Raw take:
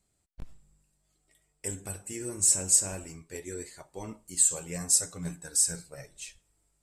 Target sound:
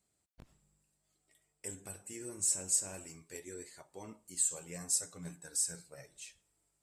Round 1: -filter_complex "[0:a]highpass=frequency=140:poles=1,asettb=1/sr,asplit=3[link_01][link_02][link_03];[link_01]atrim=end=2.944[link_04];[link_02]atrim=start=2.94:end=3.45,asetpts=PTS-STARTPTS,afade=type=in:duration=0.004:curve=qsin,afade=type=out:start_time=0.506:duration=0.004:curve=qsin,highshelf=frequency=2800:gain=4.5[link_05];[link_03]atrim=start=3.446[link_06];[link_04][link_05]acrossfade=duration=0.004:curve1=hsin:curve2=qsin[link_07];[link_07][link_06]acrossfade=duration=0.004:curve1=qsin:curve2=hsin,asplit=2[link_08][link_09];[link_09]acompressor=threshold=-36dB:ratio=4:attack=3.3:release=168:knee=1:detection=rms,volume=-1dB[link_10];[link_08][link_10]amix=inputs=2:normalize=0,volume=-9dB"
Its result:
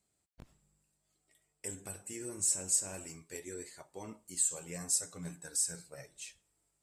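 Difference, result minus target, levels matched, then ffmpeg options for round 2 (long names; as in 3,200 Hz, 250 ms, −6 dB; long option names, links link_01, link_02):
downward compressor: peak gain reduction −9 dB
-filter_complex "[0:a]highpass=frequency=140:poles=1,asettb=1/sr,asplit=3[link_01][link_02][link_03];[link_01]atrim=end=2.944[link_04];[link_02]atrim=start=2.94:end=3.45,asetpts=PTS-STARTPTS,afade=type=in:duration=0.004:curve=qsin,afade=type=out:start_time=0.506:duration=0.004:curve=qsin,highshelf=frequency=2800:gain=4.5[link_05];[link_03]atrim=start=3.446[link_06];[link_04][link_05]acrossfade=duration=0.004:curve1=hsin:curve2=qsin[link_07];[link_07][link_06]acrossfade=duration=0.004:curve1=qsin:curve2=hsin,asplit=2[link_08][link_09];[link_09]acompressor=threshold=-48dB:ratio=4:attack=3.3:release=168:knee=1:detection=rms,volume=-1dB[link_10];[link_08][link_10]amix=inputs=2:normalize=0,volume=-9dB"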